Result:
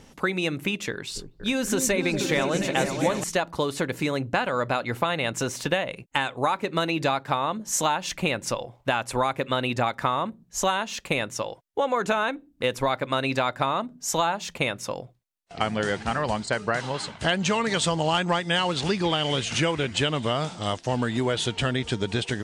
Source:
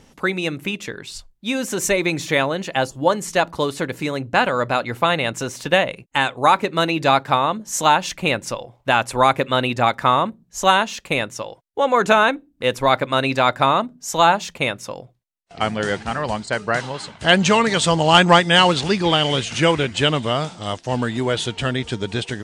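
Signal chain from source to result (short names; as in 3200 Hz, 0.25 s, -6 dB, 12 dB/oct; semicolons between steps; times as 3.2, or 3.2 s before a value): compressor 6:1, threshold -21 dBFS, peak gain reduction 13.5 dB; 0.92–3.24 repeats that get brighter 0.239 s, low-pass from 400 Hz, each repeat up 2 oct, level -3 dB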